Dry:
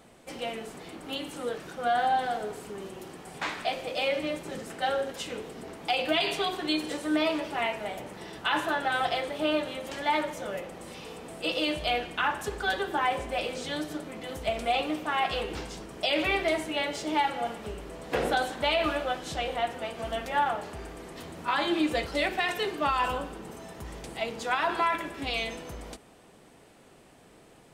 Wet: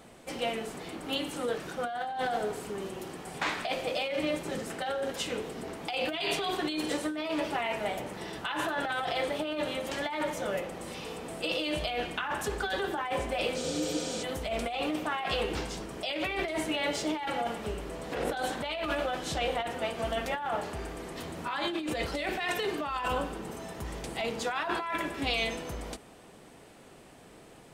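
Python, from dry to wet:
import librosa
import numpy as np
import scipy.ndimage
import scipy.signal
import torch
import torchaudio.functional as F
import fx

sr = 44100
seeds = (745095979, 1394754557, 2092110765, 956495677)

y = fx.spec_repair(x, sr, seeds[0], start_s=13.65, length_s=0.55, low_hz=380.0, high_hz=12000.0, source='before')
y = fx.over_compress(y, sr, threshold_db=-31.0, ratio=-1.0)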